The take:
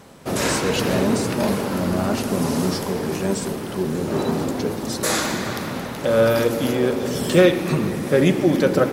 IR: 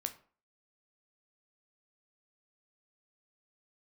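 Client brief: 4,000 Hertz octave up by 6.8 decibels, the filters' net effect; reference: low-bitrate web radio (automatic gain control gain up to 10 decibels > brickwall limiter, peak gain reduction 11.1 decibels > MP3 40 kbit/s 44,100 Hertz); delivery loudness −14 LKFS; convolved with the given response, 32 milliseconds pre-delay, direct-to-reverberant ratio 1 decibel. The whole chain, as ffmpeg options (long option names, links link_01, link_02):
-filter_complex "[0:a]equalizer=frequency=4000:width_type=o:gain=8.5,asplit=2[link_01][link_02];[1:a]atrim=start_sample=2205,adelay=32[link_03];[link_02][link_03]afir=irnorm=-1:irlink=0,volume=-0.5dB[link_04];[link_01][link_04]amix=inputs=2:normalize=0,dynaudnorm=maxgain=10dB,alimiter=limit=-12dB:level=0:latency=1,volume=7.5dB" -ar 44100 -c:a libmp3lame -b:a 40k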